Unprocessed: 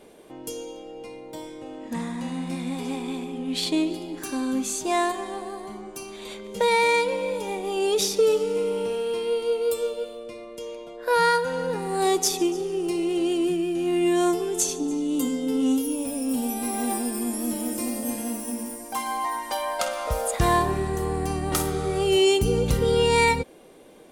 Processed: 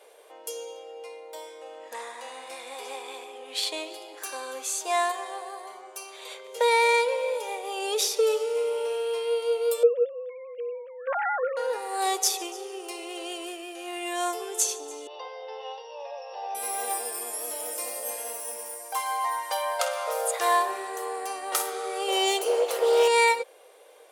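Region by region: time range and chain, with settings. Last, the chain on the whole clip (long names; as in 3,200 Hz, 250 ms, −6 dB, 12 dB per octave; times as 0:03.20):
0:09.83–0:11.57: three sine waves on the formant tracks + Chebyshev low-pass filter 2,300 Hz, order 3
0:15.07–0:16.55: linear-phase brick-wall band-pass 340–6,000 Hz + spectral tilt −4 dB per octave + comb filter 1.1 ms, depth 78%
0:22.08–0:23.08: lower of the sound and its delayed copy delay 2.3 ms + parametric band 650 Hz +6.5 dB 0.9 octaves
whole clip: Chebyshev high-pass filter 470 Hz, order 4; parametric band 12,000 Hz +2 dB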